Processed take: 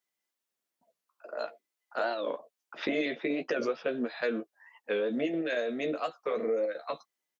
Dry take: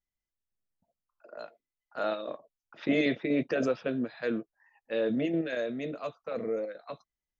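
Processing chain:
high-pass filter 310 Hz 12 dB per octave
downward compressor, threshold −35 dBFS, peak gain reduction 11 dB
double-tracking delay 13 ms −7 dB
wow of a warped record 45 rpm, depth 160 cents
level +7 dB

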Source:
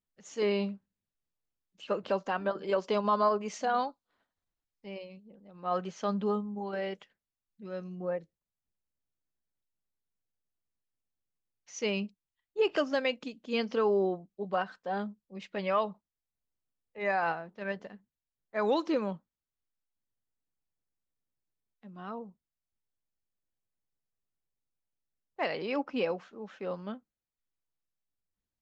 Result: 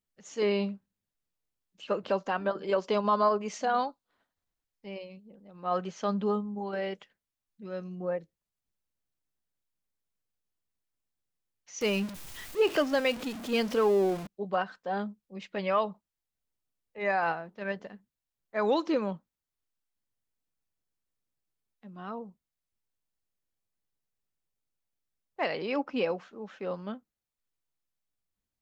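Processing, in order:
0:11.81–0:14.27: converter with a step at zero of −37 dBFS
level +1.5 dB

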